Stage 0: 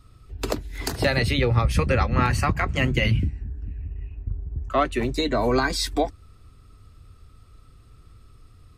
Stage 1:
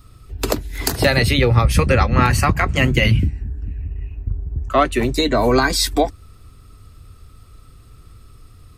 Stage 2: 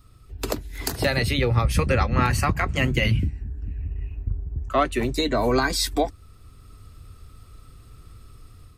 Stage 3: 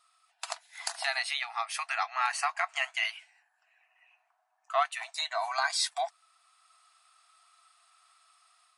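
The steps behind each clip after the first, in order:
high shelf 10000 Hz +10 dB; gain +6 dB
AGC gain up to 5 dB; gain -7 dB
brick-wall FIR band-pass 640–11000 Hz; gain -4.5 dB

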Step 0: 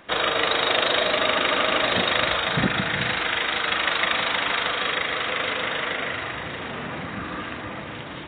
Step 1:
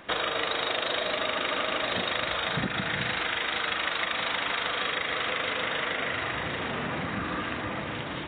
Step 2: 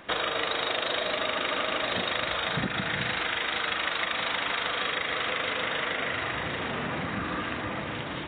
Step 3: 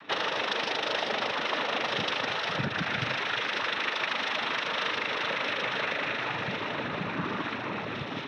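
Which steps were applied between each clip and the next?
compressor 6:1, threshold -27 dBFS, peak gain reduction 10.5 dB; gain +1 dB
nothing audible
noise vocoder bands 12

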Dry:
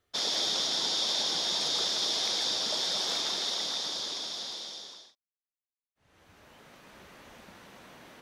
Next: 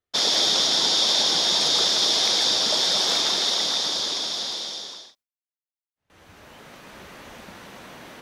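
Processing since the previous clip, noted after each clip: gate with hold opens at -56 dBFS; gain +9 dB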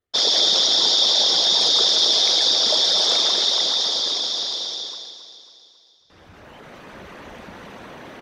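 formant sharpening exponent 1.5; on a send: feedback echo 0.273 s, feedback 52%, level -11 dB; on the sum: gain +3 dB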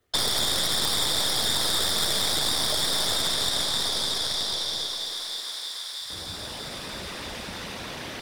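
tracing distortion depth 0.088 ms; thinning echo 0.319 s, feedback 78%, high-pass 520 Hz, level -16 dB; three-band squash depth 70%; gain -8 dB

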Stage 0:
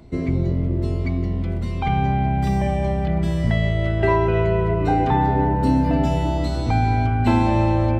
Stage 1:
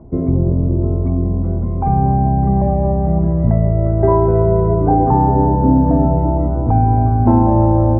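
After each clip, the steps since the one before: inverse Chebyshev low-pass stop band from 5700 Hz, stop band 80 dB; gain +6 dB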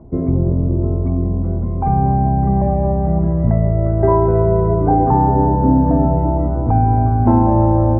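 dynamic EQ 1700 Hz, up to +3 dB, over -33 dBFS, Q 0.96; gain -1 dB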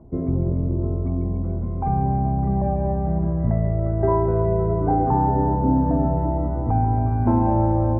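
thin delay 0.142 s, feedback 75%, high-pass 1600 Hz, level -5.5 dB; gain -6 dB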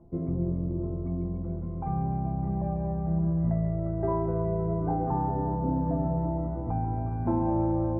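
resonator 170 Hz, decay 0.16 s, harmonics all, mix 80%

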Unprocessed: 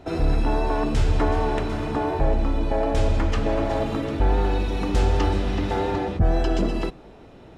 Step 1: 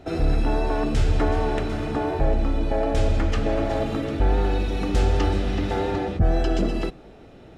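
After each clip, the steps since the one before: bell 990 Hz -8 dB 0.23 oct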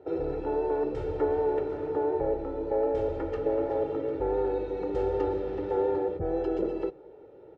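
band-pass 470 Hz, Q 1.3; comb 2.2 ms, depth 77%; gain -2.5 dB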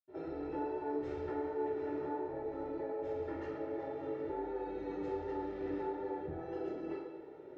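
compressor 6:1, threshold -36 dBFS, peak gain reduction 13.5 dB; reverb, pre-delay 77 ms; gain +16 dB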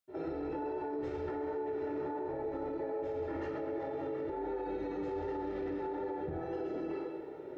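limiter -36 dBFS, peak gain reduction 9 dB; gain +6 dB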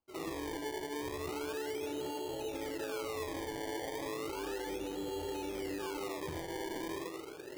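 decimation with a swept rate 23×, swing 100% 0.34 Hz; gain -2 dB

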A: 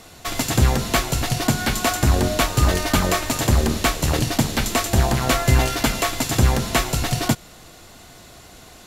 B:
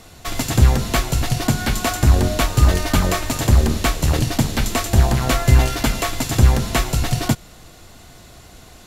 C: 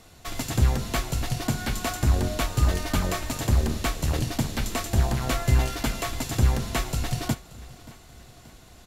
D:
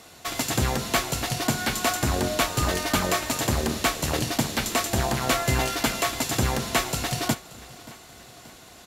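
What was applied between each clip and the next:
low shelf 130 Hz +7.5 dB; gain -1 dB
feedback echo 0.58 s, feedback 54%, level -20.5 dB; gain -8 dB
HPF 310 Hz 6 dB/oct; gain +6 dB

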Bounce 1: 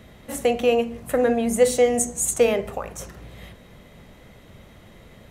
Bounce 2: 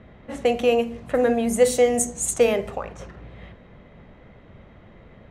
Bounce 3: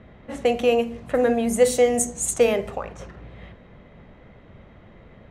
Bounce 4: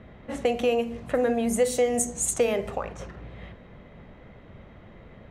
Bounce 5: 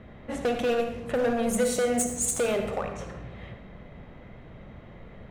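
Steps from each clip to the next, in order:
low-pass opened by the level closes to 1900 Hz, open at -18 dBFS
nothing audible
compressor 2:1, threshold -23 dBFS, peak gain reduction 7 dB
overloaded stage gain 21.5 dB; on a send at -6 dB: reverb RT60 0.95 s, pre-delay 54 ms

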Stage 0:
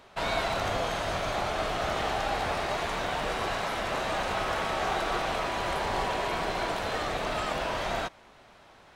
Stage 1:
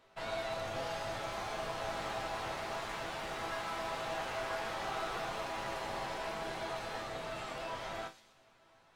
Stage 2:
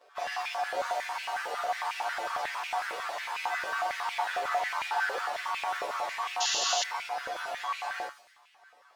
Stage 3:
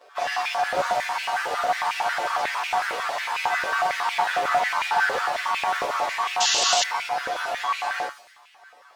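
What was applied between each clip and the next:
resonator bank A2 minor, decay 0.23 s; thin delay 0.124 s, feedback 47%, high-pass 4600 Hz, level -6 dB; echoes that change speed 0.601 s, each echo +4 st, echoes 3, each echo -6 dB; gain +1 dB
inharmonic rescaling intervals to 110%; painted sound noise, 6.4–6.84, 2600–7200 Hz -35 dBFS; stepped high-pass 11 Hz 520–2400 Hz; gain +4.5 dB
Doppler distortion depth 0.25 ms; gain +8 dB

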